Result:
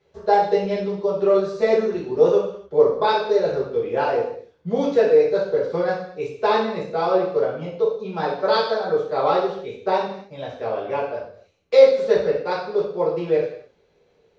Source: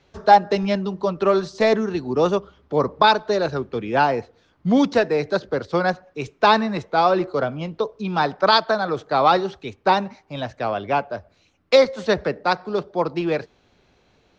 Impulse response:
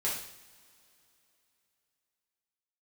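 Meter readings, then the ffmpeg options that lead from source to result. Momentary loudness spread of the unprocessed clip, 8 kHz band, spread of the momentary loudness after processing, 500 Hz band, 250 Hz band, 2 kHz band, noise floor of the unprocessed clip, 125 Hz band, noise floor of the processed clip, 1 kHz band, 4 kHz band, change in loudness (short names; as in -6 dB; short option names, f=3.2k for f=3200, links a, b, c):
10 LU, n/a, 11 LU, +3.0 dB, -5.0 dB, -6.0 dB, -61 dBFS, -5.5 dB, -61 dBFS, -5.0 dB, -7.0 dB, 0.0 dB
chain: -filter_complex "[0:a]equalizer=f=480:w=2.5:g=12.5[a];[1:a]atrim=start_sample=2205,afade=t=out:st=0.36:d=0.01,atrim=end_sample=16317[b];[a][b]afir=irnorm=-1:irlink=0,volume=-12dB"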